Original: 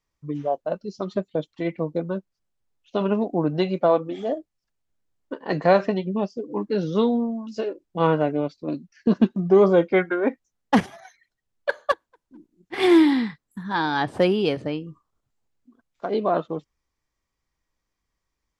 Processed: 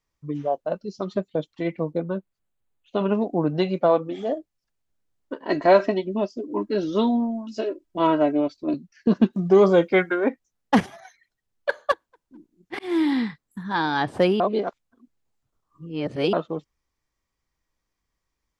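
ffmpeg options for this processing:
-filter_complex "[0:a]asettb=1/sr,asplit=3[s0][s1][s2];[s0]atrim=end=1.934[s3];[s1]atrim=start=1.93:end=3.09,asetpts=PTS-STARTPTS,afade=t=in:d=0.004:c=qsin,afade=t=out:st=1.156:d=0.004:c=qsin,equalizer=f=5400:w=3.9:g=-15[s4];[s2]atrim=start=3.086[s5];[s3][s4]acrossfade=d=0.004:c1=hsin:c2=qsin[s6];[s6][s5]acrossfade=d=0.004:c1=qsin:c2=hsin,asettb=1/sr,asplit=3[s7][s8][s9];[s7]atrim=end=5.434[s10];[s8]atrim=start=5.43:end=8.74,asetpts=PTS-STARTPTS,afade=t=in:d=0.004:c=qsin,afade=t=out:st=3.306:d=0.004:c=qsin,aecho=1:1:3.1:0.69,atrim=end_sample=145971[s11];[s9]atrim=start=8.736[s12];[s10][s11]acrossfade=d=0.004:c1=hsin:c2=qsin[s13];[s13][s12]acrossfade=d=0.004:c1=qsin:c2=hsin,asettb=1/sr,asplit=3[s14][s15][s16];[s14]atrim=end=9.334[s17];[s15]atrim=start=9.33:end=10.24,asetpts=PTS-STARTPTS,afade=t=in:d=0.004:c=qsin,afade=t=out:st=0.906:d=0.004:c=qsin,highshelf=f=3300:g=9.5[s18];[s16]atrim=start=10.236[s19];[s17][s18]acrossfade=d=0.004:c1=hsin:c2=qsin[s20];[s20][s19]acrossfade=d=0.004:c1=qsin:c2=hsin,asplit=4[s21][s22][s23][s24];[s21]atrim=end=12.79,asetpts=PTS-STARTPTS,afade=t=out:st=12.786:d=0.004:c=hsin[s25];[s22]atrim=start=12.79:end=14.402,asetpts=PTS-STARTPTS,afade=t=in:d=0.43[s26];[s23]atrim=start=14.398:end=16.332,asetpts=PTS-STARTPTS,areverse[s27];[s24]atrim=start=16.328[s28];[s25][s26]concat=n=2:v=0:a=1[s29];[s29][s27]acrossfade=d=0.004:c1=hsin:c2=hsin[s30];[s30][s28]acrossfade=d=0.004:c1=hsin:c2=hsin"

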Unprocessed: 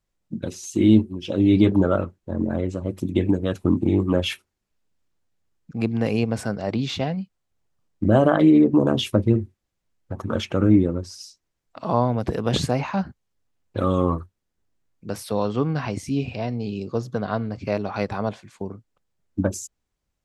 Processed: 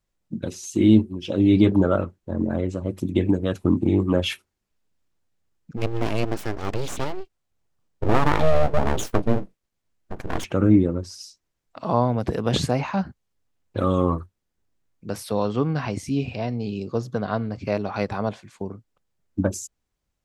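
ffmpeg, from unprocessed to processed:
-filter_complex "[0:a]asplit=3[s0][s1][s2];[s0]afade=t=out:st=5.76:d=0.02[s3];[s1]aeval=exprs='abs(val(0))':c=same,afade=t=in:st=5.76:d=0.02,afade=t=out:st=10.43:d=0.02[s4];[s2]afade=t=in:st=10.43:d=0.02[s5];[s3][s4][s5]amix=inputs=3:normalize=0"

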